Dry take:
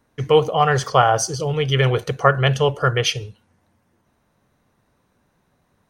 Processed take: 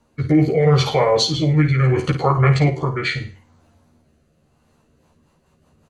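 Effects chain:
brickwall limiter −12.5 dBFS, peak gain reduction 11 dB
formants moved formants −6 semitones
double-tracking delay 13 ms −2 dB
flutter between parallel walls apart 9.2 metres, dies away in 0.31 s
rotating-speaker cabinet horn 0.75 Hz, later 5.5 Hz, at 0:04.45
level +5 dB

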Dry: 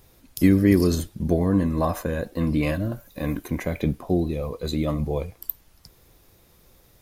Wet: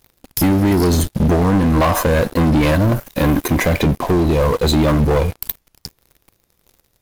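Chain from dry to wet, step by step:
dynamic equaliser 970 Hz, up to +6 dB, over −45 dBFS, Q 2.6
downward compressor 6 to 1, threshold −23 dBFS, peak gain reduction 11 dB
leveller curve on the samples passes 5

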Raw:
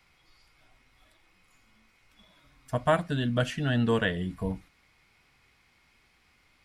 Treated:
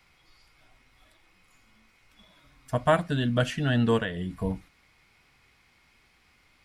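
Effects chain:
0:03.97–0:04.38: downward compressor, threshold −29 dBFS, peak gain reduction 7.5 dB
level +2 dB

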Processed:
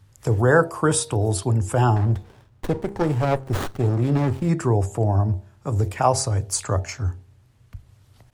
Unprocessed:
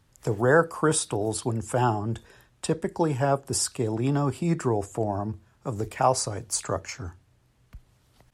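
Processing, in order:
parametric band 96 Hz +13.5 dB 0.54 octaves
hum removal 66.95 Hz, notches 14
0:01.96–0:04.49: windowed peak hold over 17 samples
level +3 dB

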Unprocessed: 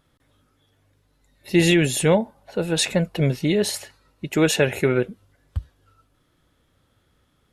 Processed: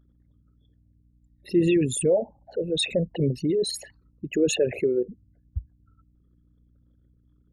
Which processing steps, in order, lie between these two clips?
spectral envelope exaggerated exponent 3
mains hum 60 Hz, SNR 34 dB
level −3.5 dB

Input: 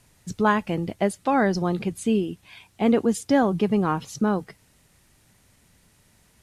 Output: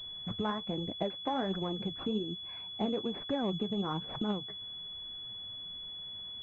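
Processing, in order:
downward compressor 3 to 1, threshold −35 dBFS, peak gain reduction 15 dB
flanger 1.2 Hz, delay 1.7 ms, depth 9.5 ms, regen +53%
switching amplifier with a slow clock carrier 3,400 Hz
level +4.5 dB

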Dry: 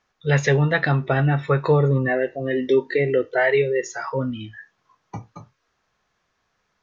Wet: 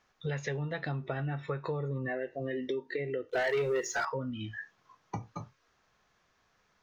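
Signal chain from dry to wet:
0:00.57–0:01.06: dynamic equaliser 1,600 Hz, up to −5 dB, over −34 dBFS, Q 0.96
downward compressor 6 to 1, threshold −33 dBFS, peak gain reduction 18.5 dB
0:03.29–0:04.05: leveller curve on the samples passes 2

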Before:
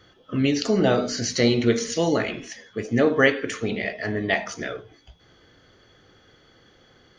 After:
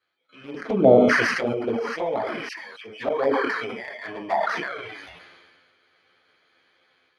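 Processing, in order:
samples in bit-reversed order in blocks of 16 samples
low-pass filter 4,100 Hz 12 dB per octave
high-shelf EQ 2,000 Hz −3.5 dB
automatic gain control gain up to 14 dB
0:02.48–0:03.09: all-pass dispersion lows, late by 88 ms, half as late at 1,300 Hz
envelope filter 670–2,800 Hz, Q 2.1, down, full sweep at −8.5 dBFS
0:00.54–0:01.09: octave-band graphic EQ 125/250/500 Hz +12/+10/+5 dB
flanger swept by the level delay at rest 11.8 ms, full sweep at −12.5 dBFS
level that may fall only so fast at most 31 dB per second
level −1 dB

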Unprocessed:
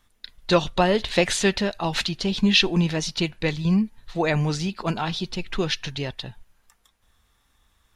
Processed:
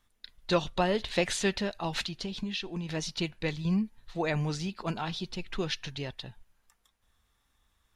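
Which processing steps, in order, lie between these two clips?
0:02.03–0:02.89: downward compressor 6 to 1, threshold −25 dBFS, peak gain reduction 11.5 dB
level −7.5 dB

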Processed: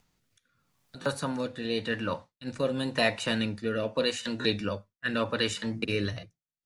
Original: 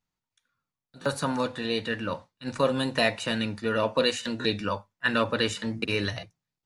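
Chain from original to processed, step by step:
noise gate with hold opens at −43 dBFS
upward compression, threshold −38 dBFS
rotating-speaker cabinet horn 0.85 Hz

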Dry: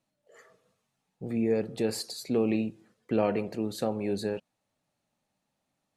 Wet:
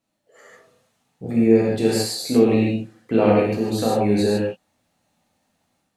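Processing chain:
reverb whose tail is shaped and stops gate 180 ms flat, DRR −5 dB
automatic gain control gain up to 5.5 dB

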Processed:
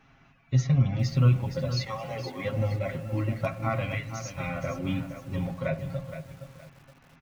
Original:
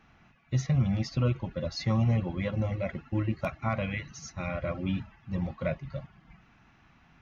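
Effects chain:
0:01.85–0:02.43: high-pass filter 730 Hz → 210 Hz 24 dB per octave
comb filter 7.4 ms, depth 63%
on a send at −13.5 dB: low-pass filter 2,700 Hz 24 dB per octave + convolution reverb RT60 0.85 s, pre-delay 30 ms
on the sum: feedback echo at a low word length 468 ms, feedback 35%, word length 8 bits, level −9.5 dB

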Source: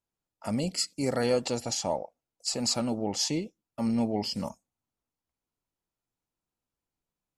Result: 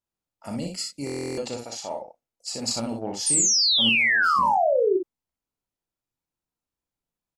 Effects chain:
0:01.57–0:02.02: bass and treble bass −13 dB, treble −4 dB
0:02.58–0:03.18: transient designer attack +8 dB, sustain −1 dB
0:03.89–0:04.39: first-order pre-emphasis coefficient 0.8
0:03.26–0:04.97: sound drawn into the spectrogram fall 350–9,300 Hz −19 dBFS
ambience of single reflections 35 ms −7.5 dB, 61 ms −5 dB
buffer that repeats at 0:01.05, samples 1,024, times 13
level −3 dB

